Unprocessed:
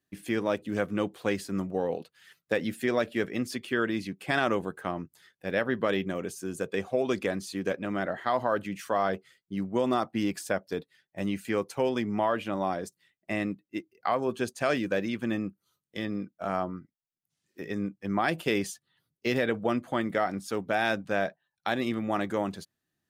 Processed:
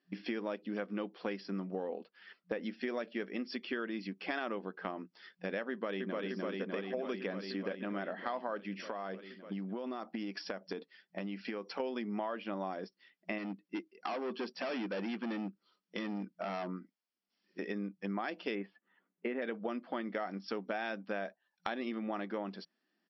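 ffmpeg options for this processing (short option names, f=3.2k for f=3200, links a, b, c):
-filter_complex "[0:a]asettb=1/sr,asplit=3[a][b][c];[a]atrim=end=1.884[d];[b]atrim=start=1.88:end=2.63,asetpts=PTS-STARTPTS,afade=t=in:d=0.004:c=qsin,afade=t=out:st=0.746:d=0.004:c=qsin,highshelf=f=3.2k:g=-11[e];[c]atrim=start=2.626[f];[d][e]acrossfade=d=0.004:c1=hsin:c2=qsin[g];[g][f]acrossfade=d=0.004:c1=qsin:c2=hsin,asplit=2[h][i];[i]afade=t=in:st=5.7:d=0.01,afade=t=out:st=6.24:d=0.01,aecho=0:1:300|600|900|1200|1500|1800|2100|2400|2700|3000|3300|3600:0.749894|0.562421|0.421815|0.316362|0.237271|0.177953|0.133465|0.100099|0.0750741|0.0563056|0.0422292|0.0316719[j];[h][j]amix=inputs=2:normalize=0,asettb=1/sr,asplit=3[k][l][m];[k]atrim=end=8.774[n];[l]atrim=start=8.77:end=11.8,asetpts=PTS-STARTPTS,afade=t=in:d=0.004:c=qsin,afade=t=out:st=3.026:d=0.004:c=qsin,acompressor=threshold=-34dB:ratio=6:attack=3.2:release=140:knee=1:detection=peak[o];[m]atrim=start=11.796[p];[n][o]acrossfade=d=0.004:c1=hsin:c2=qsin[q];[q][p]acrossfade=d=0.004:c1=qsin:c2=hsin,asettb=1/sr,asplit=3[r][s][t];[r]atrim=end=13.384[u];[s]atrim=start=13.38:end=16.68,asetpts=PTS-STARTPTS,afade=t=in:d=0.004:c=qsin,afade=t=out:st=3.296:d=0.004:c=qsin,asoftclip=type=hard:threshold=-31dB[v];[t]atrim=start=16.676[w];[u][v]acrossfade=d=0.004:c1=hsin:c2=qsin[x];[x][w]acrossfade=d=0.004:c1=qsin:c2=hsin,asettb=1/sr,asplit=3[y][z][aa];[y]atrim=end=18.554[ab];[z]atrim=start=18.55:end=19.42,asetpts=PTS-STARTPTS,afade=t=in:d=0.004:c=qsin,afade=t=out:st=0.866:d=0.004:c=qsin,lowpass=f=2.2k:w=0.5412,lowpass=f=2.2k:w=1.3066[ac];[aa]atrim=start=19.416[ad];[ab][ac]acrossfade=d=0.004:c1=hsin:c2=qsin[ae];[ae][ad]acrossfade=d=0.004:c1=qsin:c2=hsin,afftfilt=real='re*between(b*sr/4096,180,5700)':imag='im*between(b*sr/4096,180,5700)':win_size=4096:overlap=0.75,bandreject=f=3.8k:w=11,acompressor=threshold=-41dB:ratio=4,volume=4dB"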